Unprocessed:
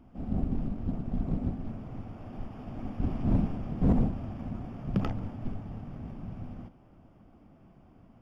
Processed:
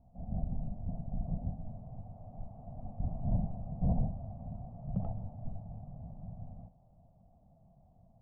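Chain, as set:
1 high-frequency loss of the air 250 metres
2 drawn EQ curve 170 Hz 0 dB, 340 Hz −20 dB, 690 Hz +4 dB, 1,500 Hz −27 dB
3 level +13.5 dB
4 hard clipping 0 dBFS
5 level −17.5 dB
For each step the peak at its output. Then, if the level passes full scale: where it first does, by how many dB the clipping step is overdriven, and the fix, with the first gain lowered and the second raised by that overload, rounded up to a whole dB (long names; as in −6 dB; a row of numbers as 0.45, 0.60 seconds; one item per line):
−17.5, −16.5, −3.0, −3.0, −20.5 dBFS
no step passes full scale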